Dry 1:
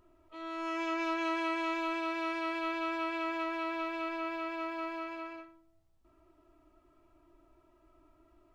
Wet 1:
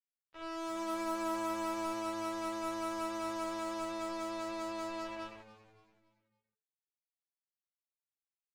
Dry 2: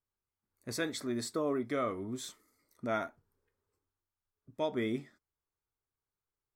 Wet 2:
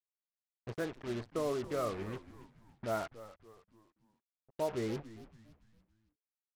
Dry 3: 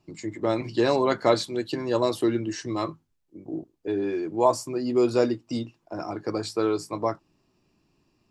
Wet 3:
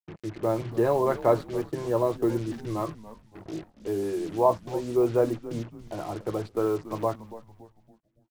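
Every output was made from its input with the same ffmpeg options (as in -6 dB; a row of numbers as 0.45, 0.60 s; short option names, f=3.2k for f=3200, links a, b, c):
-filter_complex "[0:a]lowpass=1.2k,lowshelf=f=81:g=7,acrusher=bits=6:mix=0:aa=0.5,equalizer=f=260:w=3.4:g=-10.5,asplit=5[a][b][c][d][e];[b]adelay=282,afreqshift=-110,volume=-15.5dB[f];[c]adelay=564,afreqshift=-220,volume=-23.2dB[g];[d]adelay=846,afreqshift=-330,volume=-31dB[h];[e]adelay=1128,afreqshift=-440,volume=-38.7dB[i];[a][f][g][h][i]amix=inputs=5:normalize=0"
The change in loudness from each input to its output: -3.0, -2.0, -1.0 LU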